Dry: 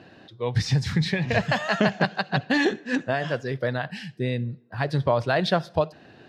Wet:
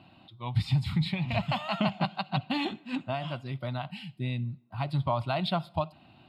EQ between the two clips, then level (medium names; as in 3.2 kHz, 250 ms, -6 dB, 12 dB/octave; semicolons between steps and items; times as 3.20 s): static phaser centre 1.7 kHz, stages 6; -2.5 dB